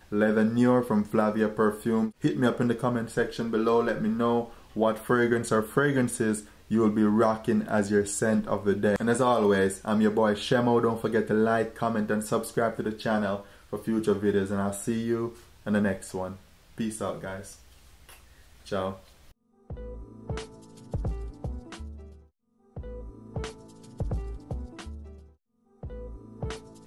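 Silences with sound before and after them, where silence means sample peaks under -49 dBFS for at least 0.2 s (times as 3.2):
19.31–19.7
22.23–22.76
25.3–25.83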